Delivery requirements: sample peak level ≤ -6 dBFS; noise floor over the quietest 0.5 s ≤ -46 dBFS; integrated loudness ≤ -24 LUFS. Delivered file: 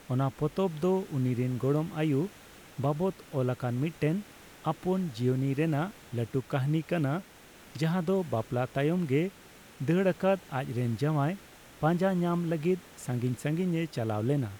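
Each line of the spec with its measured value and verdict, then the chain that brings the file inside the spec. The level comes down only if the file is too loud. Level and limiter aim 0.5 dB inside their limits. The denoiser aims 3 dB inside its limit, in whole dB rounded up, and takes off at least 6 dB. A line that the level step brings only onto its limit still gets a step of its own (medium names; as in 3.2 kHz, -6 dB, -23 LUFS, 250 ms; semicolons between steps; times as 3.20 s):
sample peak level -16.0 dBFS: pass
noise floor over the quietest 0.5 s -53 dBFS: pass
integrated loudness -30.5 LUFS: pass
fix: none needed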